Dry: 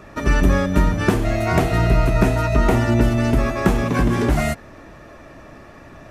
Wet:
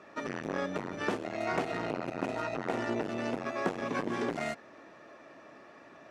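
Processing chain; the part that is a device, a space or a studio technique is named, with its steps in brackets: public-address speaker with an overloaded transformer (core saturation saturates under 490 Hz; BPF 280–6200 Hz); gain -9 dB

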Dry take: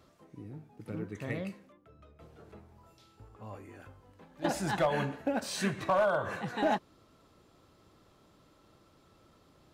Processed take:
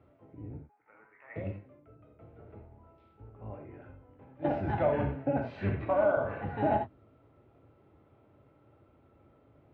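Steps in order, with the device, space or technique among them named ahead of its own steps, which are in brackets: 0.57–1.36 Chebyshev band-pass 970–2000 Hz, order 2; non-linear reverb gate 0.11 s flat, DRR 2.5 dB; sub-octave bass pedal (octaver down 1 oct, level -1 dB; speaker cabinet 73–2100 Hz, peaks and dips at 110 Hz +3 dB, 180 Hz -9 dB, 1100 Hz -9 dB, 1700 Hz -8 dB)

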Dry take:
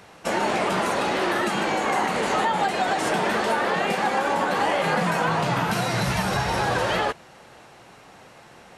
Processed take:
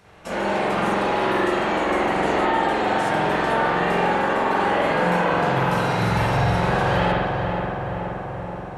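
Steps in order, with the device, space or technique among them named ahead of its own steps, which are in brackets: low shelf 83 Hz +10 dB; dub delay into a spring reverb (darkening echo 0.475 s, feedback 71%, low-pass 2200 Hz, level -5 dB; spring tank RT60 1.2 s, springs 45 ms, chirp 35 ms, DRR -7 dB); gain -7.5 dB

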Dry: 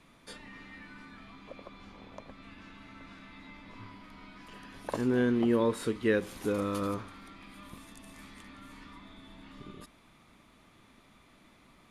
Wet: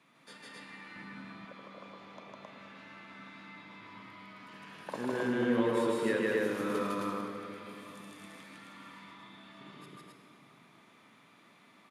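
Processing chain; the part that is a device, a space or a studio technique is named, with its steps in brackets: stadium PA (HPF 130 Hz 24 dB/oct; bell 1600 Hz +5 dB 2.8 oct; loudspeakers at several distances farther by 53 m 0 dB, 91 m -1 dB; reverb RT60 2.9 s, pre-delay 27 ms, DRR 5 dB); 0.96–1.45 low shelf 360 Hz +9.5 dB; gain -8.5 dB

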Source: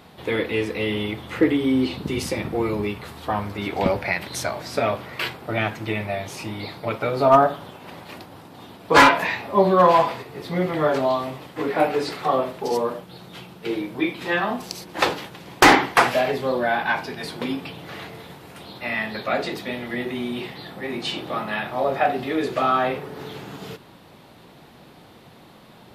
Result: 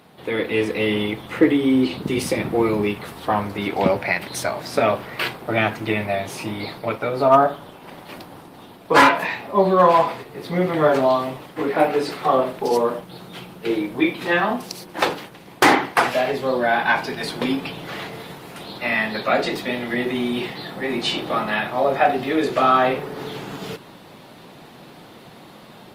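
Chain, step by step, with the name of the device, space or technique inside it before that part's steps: video call (HPF 120 Hz 12 dB/oct; AGC gain up to 6 dB; gain -1 dB; Opus 32 kbps 48000 Hz)

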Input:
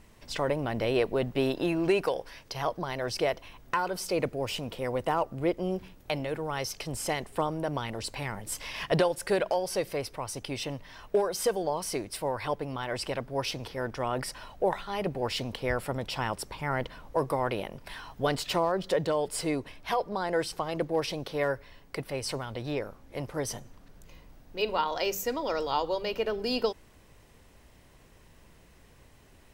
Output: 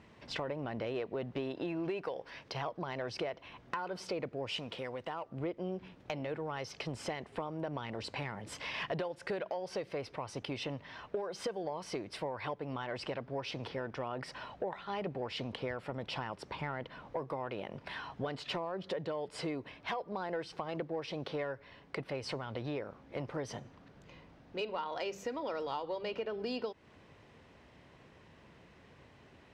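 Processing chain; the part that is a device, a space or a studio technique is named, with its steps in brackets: AM radio (BPF 100–3600 Hz; compressor 6:1, threshold -35 dBFS, peak gain reduction 14 dB; soft clip -25 dBFS, distortion -24 dB); 4.49–5.29 tilt shelf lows -4.5 dB, about 1400 Hz; gain +1 dB

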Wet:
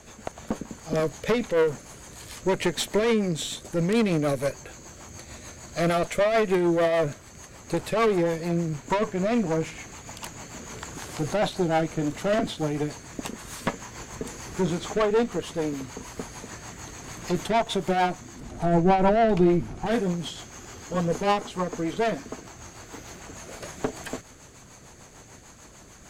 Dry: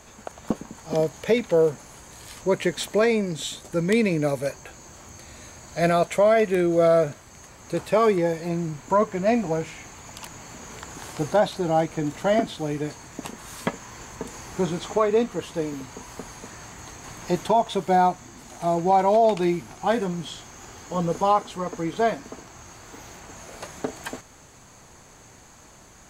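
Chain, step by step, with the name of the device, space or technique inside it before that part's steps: overdriven rotary cabinet (tube stage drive 22 dB, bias 0.5; rotary speaker horn 6.7 Hz); 18.4–19.86 tilt -2.5 dB/oct; gain +5.5 dB

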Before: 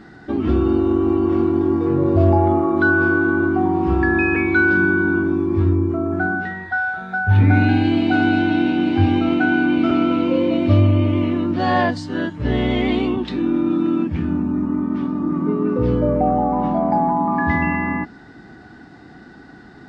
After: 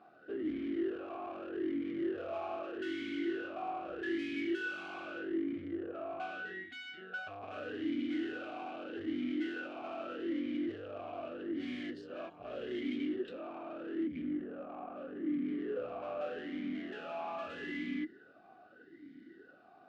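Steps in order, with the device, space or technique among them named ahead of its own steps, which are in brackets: talk box (tube stage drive 28 dB, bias 0.75; vowel sweep a-i 0.81 Hz); gain +1 dB

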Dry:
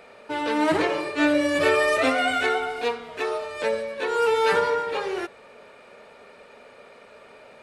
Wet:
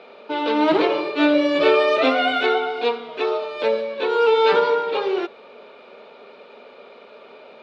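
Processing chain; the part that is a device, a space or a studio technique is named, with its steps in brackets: kitchen radio (speaker cabinet 230–4400 Hz, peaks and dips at 230 Hz +3 dB, 390 Hz +4 dB, 1800 Hz -9 dB, 3600 Hz +4 dB); gain +4 dB

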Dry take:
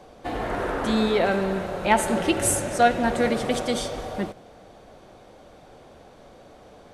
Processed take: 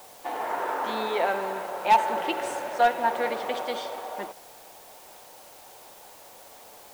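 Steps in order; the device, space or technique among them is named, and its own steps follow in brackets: drive-through speaker (BPF 470–3700 Hz; bell 910 Hz +10 dB 0.35 oct; hard clip -9.5 dBFS, distortion -15 dB; white noise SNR 22 dB); gain -3 dB

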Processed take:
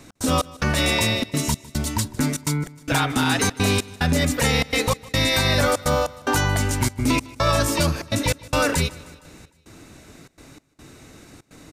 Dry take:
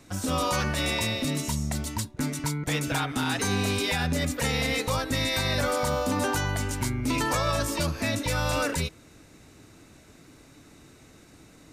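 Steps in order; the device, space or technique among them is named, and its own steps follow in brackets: trance gate with a delay (step gate "x.xx..xxxxx" 146 bpm -60 dB; feedback echo 0.154 s, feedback 59%, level -21.5 dB); gain +7 dB

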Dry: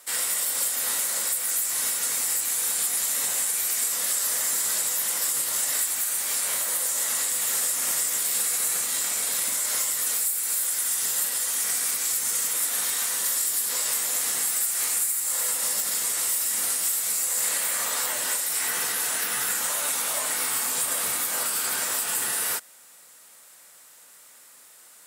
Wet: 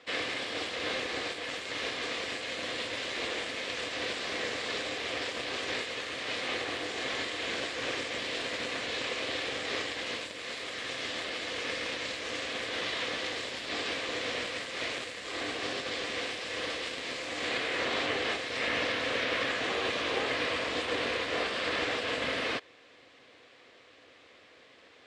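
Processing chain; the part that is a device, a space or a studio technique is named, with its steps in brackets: ring modulator pedal into a guitar cabinet (polarity switched at an audio rate 200 Hz; speaker cabinet 90–3600 Hz, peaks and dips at 170 Hz -6 dB, 270 Hz +4 dB, 500 Hz +10 dB, 880 Hz -8 dB, 1400 Hz -7 dB); gain +3.5 dB

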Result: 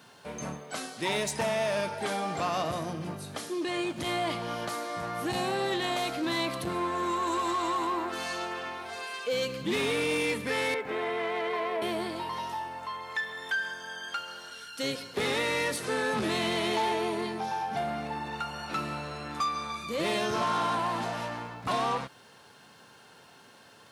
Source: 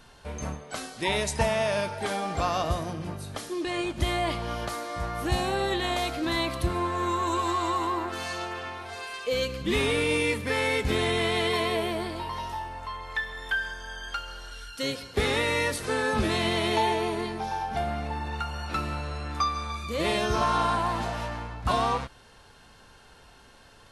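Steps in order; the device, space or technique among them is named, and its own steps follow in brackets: 10.74–11.82 three-band isolator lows -16 dB, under 380 Hz, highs -21 dB, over 2200 Hz; open-reel tape (soft clip -23 dBFS, distortion -14 dB; bell 62 Hz +3.5 dB 0.92 oct; white noise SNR 44 dB); HPF 130 Hz 24 dB/oct

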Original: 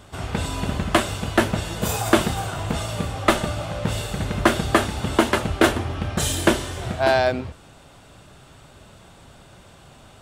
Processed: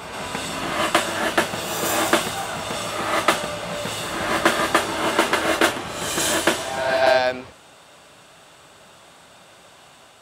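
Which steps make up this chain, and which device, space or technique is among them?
ghost voice (reverse; reverb RT60 1.3 s, pre-delay 97 ms, DRR 1.5 dB; reverse; HPF 670 Hz 6 dB/oct); gain +2 dB

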